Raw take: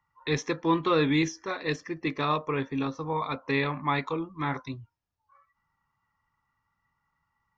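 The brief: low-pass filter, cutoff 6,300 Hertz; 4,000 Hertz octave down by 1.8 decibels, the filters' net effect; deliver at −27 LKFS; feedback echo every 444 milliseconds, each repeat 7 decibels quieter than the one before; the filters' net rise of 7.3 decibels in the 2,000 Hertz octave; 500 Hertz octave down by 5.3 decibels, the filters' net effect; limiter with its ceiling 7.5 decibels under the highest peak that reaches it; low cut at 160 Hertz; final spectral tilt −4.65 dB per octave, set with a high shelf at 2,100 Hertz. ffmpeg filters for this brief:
ffmpeg -i in.wav -af "highpass=160,lowpass=6300,equalizer=frequency=500:width_type=o:gain=-7,equalizer=frequency=2000:width_type=o:gain=8,highshelf=frequency=2100:gain=5.5,equalizer=frequency=4000:width_type=o:gain=-8.5,alimiter=limit=-18dB:level=0:latency=1,aecho=1:1:444|888|1332|1776|2220:0.447|0.201|0.0905|0.0407|0.0183,volume=3dB" out.wav

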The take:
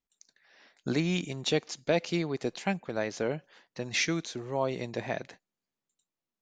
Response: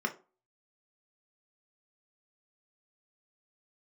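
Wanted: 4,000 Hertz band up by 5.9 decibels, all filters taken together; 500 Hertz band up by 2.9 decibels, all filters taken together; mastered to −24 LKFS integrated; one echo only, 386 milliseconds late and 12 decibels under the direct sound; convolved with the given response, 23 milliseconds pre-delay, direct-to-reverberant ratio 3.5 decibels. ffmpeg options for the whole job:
-filter_complex "[0:a]equalizer=frequency=500:width_type=o:gain=3.5,equalizer=frequency=4000:width_type=o:gain=7,aecho=1:1:386:0.251,asplit=2[link_01][link_02];[1:a]atrim=start_sample=2205,adelay=23[link_03];[link_02][link_03]afir=irnorm=-1:irlink=0,volume=-9.5dB[link_04];[link_01][link_04]amix=inputs=2:normalize=0,volume=3dB"

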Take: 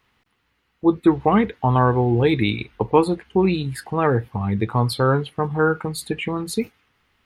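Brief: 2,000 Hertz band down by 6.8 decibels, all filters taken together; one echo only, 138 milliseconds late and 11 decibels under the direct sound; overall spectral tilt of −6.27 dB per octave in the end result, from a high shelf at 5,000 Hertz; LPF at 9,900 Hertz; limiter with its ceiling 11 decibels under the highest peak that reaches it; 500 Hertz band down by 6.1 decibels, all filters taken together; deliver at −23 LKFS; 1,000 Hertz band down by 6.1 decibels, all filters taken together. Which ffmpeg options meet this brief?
ffmpeg -i in.wav -af "lowpass=9900,equalizer=frequency=500:width_type=o:gain=-7,equalizer=frequency=1000:width_type=o:gain=-3.5,equalizer=frequency=2000:width_type=o:gain=-8.5,highshelf=frequency=5000:gain=5,alimiter=limit=-19.5dB:level=0:latency=1,aecho=1:1:138:0.282,volume=6dB" out.wav

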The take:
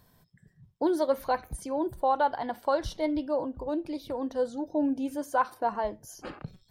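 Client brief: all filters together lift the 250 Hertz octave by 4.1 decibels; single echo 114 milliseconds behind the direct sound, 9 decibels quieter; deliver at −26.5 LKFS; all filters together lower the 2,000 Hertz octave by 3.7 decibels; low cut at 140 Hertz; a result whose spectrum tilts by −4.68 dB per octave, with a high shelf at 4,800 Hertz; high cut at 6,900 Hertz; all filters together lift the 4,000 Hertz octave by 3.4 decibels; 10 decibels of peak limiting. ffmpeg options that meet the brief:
ffmpeg -i in.wav -af "highpass=140,lowpass=6900,equalizer=frequency=250:width_type=o:gain=5.5,equalizer=frequency=2000:width_type=o:gain=-7.5,equalizer=frequency=4000:width_type=o:gain=3,highshelf=frequency=4800:gain=7,alimiter=limit=-22.5dB:level=0:latency=1,aecho=1:1:114:0.355,volume=5dB" out.wav

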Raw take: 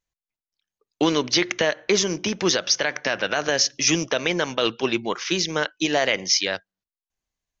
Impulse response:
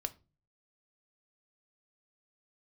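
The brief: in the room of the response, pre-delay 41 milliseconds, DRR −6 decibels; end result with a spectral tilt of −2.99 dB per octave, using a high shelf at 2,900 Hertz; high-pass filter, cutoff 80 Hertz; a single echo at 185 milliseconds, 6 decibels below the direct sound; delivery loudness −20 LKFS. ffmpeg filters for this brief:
-filter_complex "[0:a]highpass=80,highshelf=frequency=2900:gain=-6,aecho=1:1:185:0.501,asplit=2[link_01][link_02];[1:a]atrim=start_sample=2205,adelay=41[link_03];[link_02][link_03]afir=irnorm=-1:irlink=0,volume=6dB[link_04];[link_01][link_04]amix=inputs=2:normalize=0,volume=-3.5dB"

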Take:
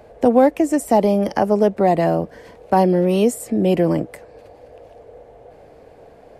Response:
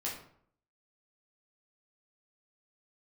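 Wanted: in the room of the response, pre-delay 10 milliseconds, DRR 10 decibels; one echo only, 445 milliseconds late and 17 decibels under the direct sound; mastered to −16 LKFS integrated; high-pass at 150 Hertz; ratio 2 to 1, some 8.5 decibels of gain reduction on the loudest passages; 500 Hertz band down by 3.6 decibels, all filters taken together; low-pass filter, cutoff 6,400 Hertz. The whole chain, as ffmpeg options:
-filter_complex "[0:a]highpass=150,lowpass=6400,equalizer=frequency=500:width_type=o:gain=-4.5,acompressor=threshold=-27dB:ratio=2,aecho=1:1:445:0.141,asplit=2[link_01][link_02];[1:a]atrim=start_sample=2205,adelay=10[link_03];[link_02][link_03]afir=irnorm=-1:irlink=0,volume=-12.5dB[link_04];[link_01][link_04]amix=inputs=2:normalize=0,volume=10.5dB"

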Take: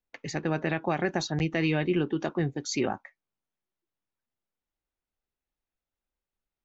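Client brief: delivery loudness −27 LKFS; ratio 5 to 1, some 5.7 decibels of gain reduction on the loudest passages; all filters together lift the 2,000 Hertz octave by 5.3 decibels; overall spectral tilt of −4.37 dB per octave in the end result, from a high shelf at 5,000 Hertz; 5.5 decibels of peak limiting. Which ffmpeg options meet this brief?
ffmpeg -i in.wav -af "equalizer=frequency=2000:width_type=o:gain=6,highshelf=frequency=5000:gain=3.5,acompressor=threshold=-27dB:ratio=5,volume=6.5dB,alimiter=limit=-14dB:level=0:latency=1" out.wav

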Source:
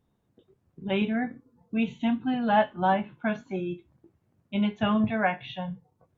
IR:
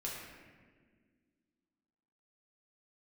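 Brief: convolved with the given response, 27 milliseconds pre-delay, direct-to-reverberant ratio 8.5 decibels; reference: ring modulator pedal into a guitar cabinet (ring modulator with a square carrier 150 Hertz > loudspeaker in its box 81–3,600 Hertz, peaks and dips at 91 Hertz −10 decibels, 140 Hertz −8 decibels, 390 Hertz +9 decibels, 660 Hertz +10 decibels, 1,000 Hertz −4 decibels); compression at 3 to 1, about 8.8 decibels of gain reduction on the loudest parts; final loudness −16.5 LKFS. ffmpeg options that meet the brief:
-filter_complex "[0:a]acompressor=threshold=-29dB:ratio=3,asplit=2[link_01][link_02];[1:a]atrim=start_sample=2205,adelay=27[link_03];[link_02][link_03]afir=irnorm=-1:irlink=0,volume=-9.5dB[link_04];[link_01][link_04]amix=inputs=2:normalize=0,aeval=exprs='val(0)*sgn(sin(2*PI*150*n/s))':channel_layout=same,highpass=81,equalizer=frequency=91:width_type=q:width=4:gain=-10,equalizer=frequency=140:width_type=q:width=4:gain=-8,equalizer=frequency=390:width_type=q:width=4:gain=9,equalizer=frequency=660:width_type=q:width=4:gain=10,equalizer=frequency=1000:width_type=q:width=4:gain=-4,lowpass=frequency=3600:width=0.5412,lowpass=frequency=3600:width=1.3066,volume=12dB"

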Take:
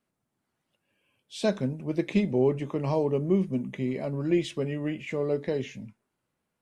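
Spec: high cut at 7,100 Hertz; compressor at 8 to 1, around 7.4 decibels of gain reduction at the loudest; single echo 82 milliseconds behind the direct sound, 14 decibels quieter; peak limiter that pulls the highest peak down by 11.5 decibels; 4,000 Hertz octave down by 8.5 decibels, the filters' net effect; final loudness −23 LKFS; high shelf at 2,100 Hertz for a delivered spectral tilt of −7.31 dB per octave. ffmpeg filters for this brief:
ffmpeg -i in.wav -af "lowpass=7100,highshelf=frequency=2100:gain=-5,equalizer=frequency=4000:width_type=o:gain=-6,acompressor=threshold=-26dB:ratio=8,alimiter=level_in=5.5dB:limit=-24dB:level=0:latency=1,volume=-5.5dB,aecho=1:1:82:0.2,volume=15dB" out.wav

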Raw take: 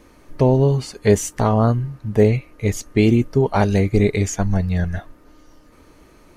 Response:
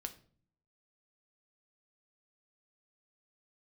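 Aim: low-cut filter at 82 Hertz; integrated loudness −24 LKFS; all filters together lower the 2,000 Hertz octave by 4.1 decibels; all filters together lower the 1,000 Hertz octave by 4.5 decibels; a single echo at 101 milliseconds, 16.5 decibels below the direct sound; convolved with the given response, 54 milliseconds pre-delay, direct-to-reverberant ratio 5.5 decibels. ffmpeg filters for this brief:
-filter_complex "[0:a]highpass=82,equalizer=frequency=1000:width_type=o:gain=-5.5,equalizer=frequency=2000:width_type=o:gain=-3.5,aecho=1:1:101:0.15,asplit=2[link_01][link_02];[1:a]atrim=start_sample=2205,adelay=54[link_03];[link_02][link_03]afir=irnorm=-1:irlink=0,volume=-3dB[link_04];[link_01][link_04]amix=inputs=2:normalize=0,volume=-5.5dB"

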